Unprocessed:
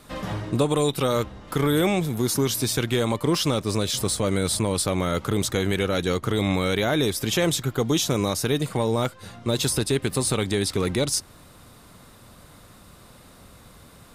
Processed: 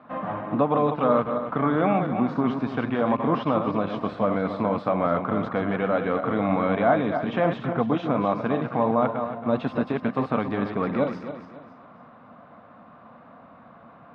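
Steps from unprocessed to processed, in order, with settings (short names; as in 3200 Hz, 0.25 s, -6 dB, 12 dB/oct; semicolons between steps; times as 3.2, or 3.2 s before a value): regenerating reverse delay 0.138 s, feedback 57%, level -6.5 dB; speaker cabinet 190–2100 Hz, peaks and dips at 240 Hz +6 dB, 380 Hz -10 dB, 690 Hz +9 dB, 1100 Hz +6 dB, 2000 Hz -5 dB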